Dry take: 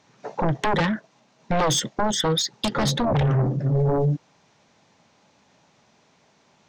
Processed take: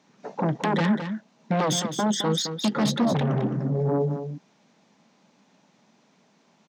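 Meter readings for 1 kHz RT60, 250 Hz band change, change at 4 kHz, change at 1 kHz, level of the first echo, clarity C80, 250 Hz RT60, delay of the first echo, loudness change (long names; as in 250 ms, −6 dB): no reverb audible, +2.0 dB, −3.5 dB, −3.0 dB, −9.0 dB, no reverb audible, no reverb audible, 214 ms, −2.0 dB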